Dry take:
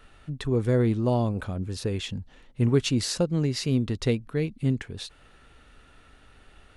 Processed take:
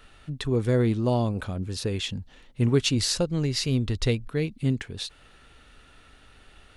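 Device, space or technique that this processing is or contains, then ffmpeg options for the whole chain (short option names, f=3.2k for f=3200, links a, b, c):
presence and air boost: -filter_complex "[0:a]asplit=3[a][b][c];[a]afade=t=out:st=2.94:d=0.02[d];[b]asubboost=boost=4:cutoff=89,afade=t=in:st=2.94:d=0.02,afade=t=out:st=4.28:d=0.02[e];[c]afade=t=in:st=4.28:d=0.02[f];[d][e][f]amix=inputs=3:normalize=0,equalizer=f=3.9k:t=o:w=1.7:g=4,highshelf=f=9.7k:g=4.5"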